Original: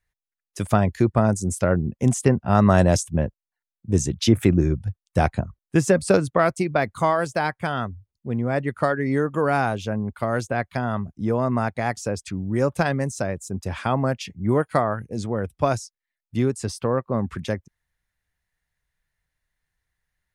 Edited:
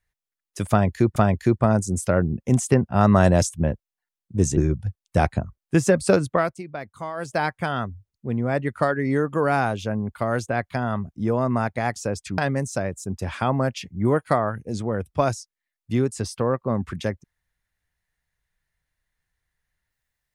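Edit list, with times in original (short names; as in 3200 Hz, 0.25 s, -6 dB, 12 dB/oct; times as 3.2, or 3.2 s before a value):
0.7–1.16 loop, 2 plays
4.11–4.58 cut
6.33–7.39 dip -12 dB, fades 0.25 s
12.39–12.82 cut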